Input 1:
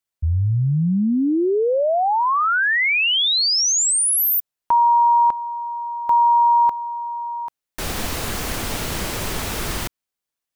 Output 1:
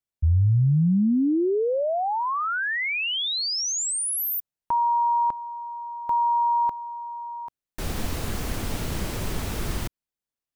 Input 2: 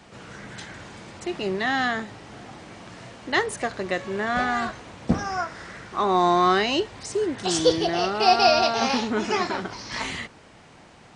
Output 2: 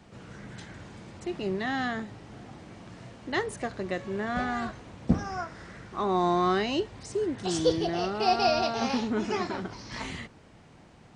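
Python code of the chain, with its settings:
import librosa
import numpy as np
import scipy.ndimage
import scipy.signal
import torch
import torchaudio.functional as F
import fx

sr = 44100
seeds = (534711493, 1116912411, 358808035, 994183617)

y = fx.low_shelf(x, sr, hz=390.0, db=9.0)
y = F.gain(torch.from_numpy(y), -8.5).numpy()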